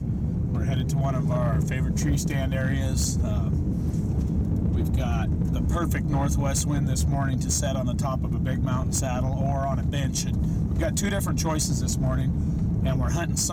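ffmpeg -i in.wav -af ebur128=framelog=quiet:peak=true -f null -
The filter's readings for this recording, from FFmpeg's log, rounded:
Integrated loudness:
  I:         -25.4 LUFS
  Threshold: -35.4 LUFS
Loudness range:
  LRA:         0.7 LU
  Threshold: -45.4 LUFS
  LRA low:   -25.7 LUFS
  LRA high:  -25.0 LUFS
True peak:
  Peak:      -15.6 dBFS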